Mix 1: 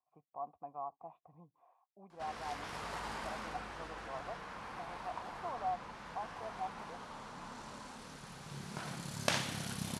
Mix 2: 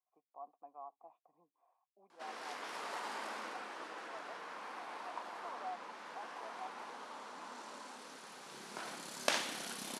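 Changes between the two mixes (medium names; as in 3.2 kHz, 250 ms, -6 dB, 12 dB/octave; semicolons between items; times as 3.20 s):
speech -7.5 dB; master: add high-pass 270 Hz 24 dB/octave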